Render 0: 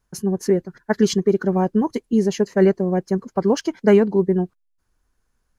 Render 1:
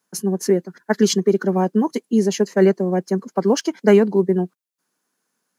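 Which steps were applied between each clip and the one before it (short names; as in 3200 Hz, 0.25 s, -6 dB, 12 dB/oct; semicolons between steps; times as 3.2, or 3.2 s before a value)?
steep high-pass 170 Hz; high shelf 4500 Hz +6.5 dB; gain +1 dB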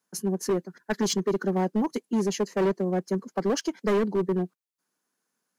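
hard clip -14 dBFS, distortion -9 dB; gain -6 dB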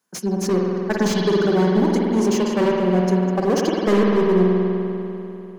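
spring tank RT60 3.1 s, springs 49 ms, chirp 35 ms, DRR -2 dB; dynamic EQ 6300 Hz, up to +6 dB, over -48 dBFS, Q 0.96; slew limiter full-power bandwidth 140 Hz; gain +4 dB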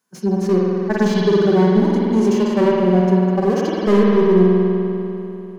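harmonic-percussive split percussive -15 dB; gain +4 dB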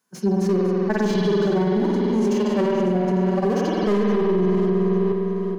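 regenerating reverse delay 0.427 s, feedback 43%, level -11 dB; limiter -13 dBFS, peak gain reduction 10.5 dB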